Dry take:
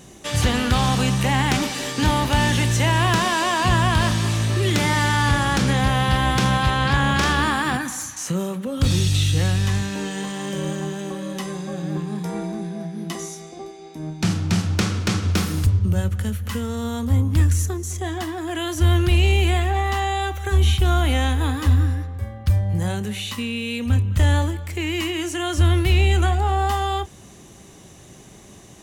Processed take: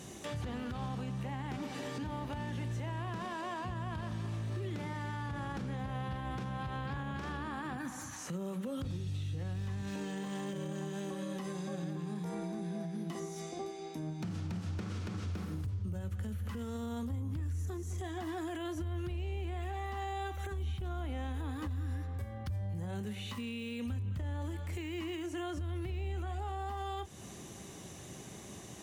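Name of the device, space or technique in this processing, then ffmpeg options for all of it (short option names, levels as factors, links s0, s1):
podcast mastering chain: -af "highpass=65,deesser=1,acompressor=threshold=0.0178:ratio=2,alimiter=level_in=1.58:limit=0.0631:level=0:latency=1:release=100,volume=0.631,volume=0.75" -ar 44100 -c:a libmp3lame -b:a 96k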